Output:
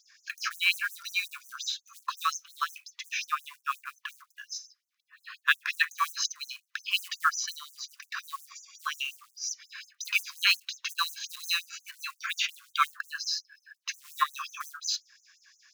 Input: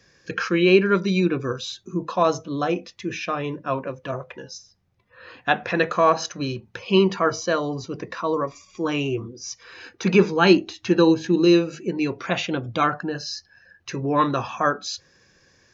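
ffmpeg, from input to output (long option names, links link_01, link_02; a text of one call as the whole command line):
ffmpeg -i in.wav -af "acrusher=bits=7:mode=log:mix=0:aa=0.000001,afftfilt=real='re*gte(b*sr/1024,980*pow(6000/980,0.5+0.5*sin(2*PI*5.6*pts/sr)))':imag='im*gte(b*sr/1024,980*pow(6000/980,0.5+0.5*sin(2*PI*5.6*pts/sr)))':win_size=1024:overlap=0.75,volume=1.5dB" out.wav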